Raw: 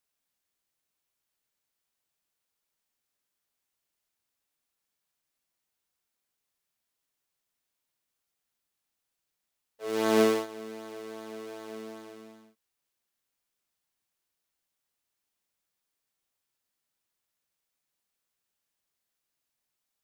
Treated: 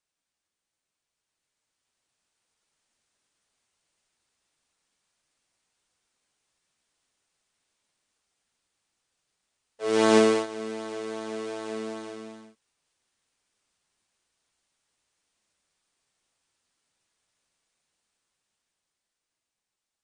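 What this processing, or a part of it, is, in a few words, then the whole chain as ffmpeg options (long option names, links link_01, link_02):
low-bitrate web radio: -af "dynaudnorm=framelen=180:gausssize=21:maxgain=9dB,alimiter=limit=-8dB:level=0:latency=1:release=444" -ar 22050 -c:a libmp3lame -b:a 40k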